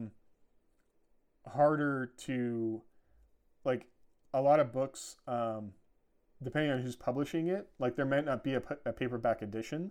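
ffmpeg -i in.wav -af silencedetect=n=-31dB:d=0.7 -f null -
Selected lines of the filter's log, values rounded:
silence_start: 0.00
silence_end: 1.55 | silence_duration: 1.55
silence_start: 2.75
silence_end: 3.66 | silence_duration: 0.92
silence_start: 5.52
silence_end: 6.46 | silence_duration: 0.95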